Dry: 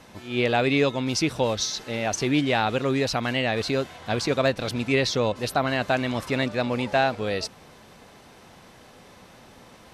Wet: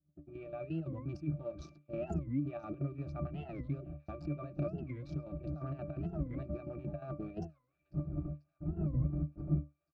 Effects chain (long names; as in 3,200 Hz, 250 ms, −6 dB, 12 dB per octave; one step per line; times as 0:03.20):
adaptive Wiener filter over 41 samples
wind on the microphone 220 Hz −37 dBFS
noise gate −38 dBFS, range −38 dB
parametric band 3,200 Hz −9 dB 0.72 octaves
comb filter 5.7 ms, depth 45%
brickwall limiter −17.5 dBFS, peak gain reduction 7.5 dB
compressor whose output falls as the input rises −32 dBFS, ratio −1
square-wave tremolo 5.7 Hz, depth 65%, duty 65%
resonances in every octave D, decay 0.19 s
delay with a high-pass on its return 489 ms, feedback 70%, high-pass 1,600 Hz, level −22 dB
wow of a warped record 45 rpm, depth 250 cents
level +7.5 dB